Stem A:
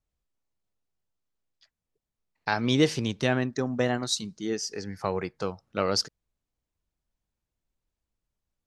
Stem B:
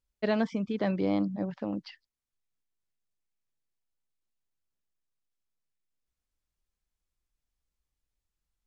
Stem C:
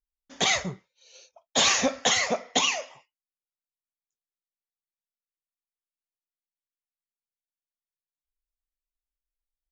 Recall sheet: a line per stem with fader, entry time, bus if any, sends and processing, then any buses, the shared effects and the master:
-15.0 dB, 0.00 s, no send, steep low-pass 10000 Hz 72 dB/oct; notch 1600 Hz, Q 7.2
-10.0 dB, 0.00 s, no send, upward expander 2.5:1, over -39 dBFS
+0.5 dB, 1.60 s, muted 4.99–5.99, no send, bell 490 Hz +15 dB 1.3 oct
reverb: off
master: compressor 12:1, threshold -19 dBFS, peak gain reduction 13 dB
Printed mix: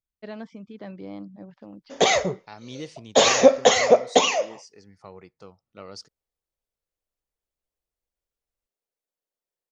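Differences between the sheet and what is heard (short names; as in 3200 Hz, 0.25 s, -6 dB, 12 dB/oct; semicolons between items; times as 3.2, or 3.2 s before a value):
stem B: missing upward expander 2.5:1, over -39 dBFS; master: missing compressor 12:1, threshold -19 dBFS, peak gain reduction 13 dB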